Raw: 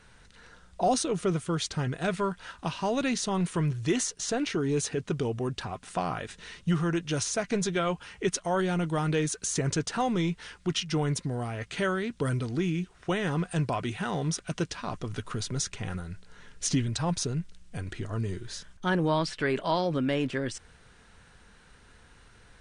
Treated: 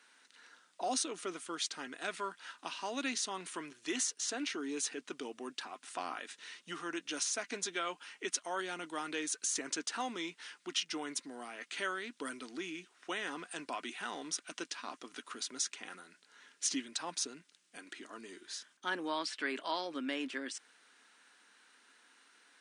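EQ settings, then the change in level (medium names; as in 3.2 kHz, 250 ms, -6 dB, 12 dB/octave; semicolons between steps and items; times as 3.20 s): elliptic high-pass 270 Hz, stop band 70 dB; peaking EQ 490 Hz -11.5 dB 1.9 oct; -2.0 dB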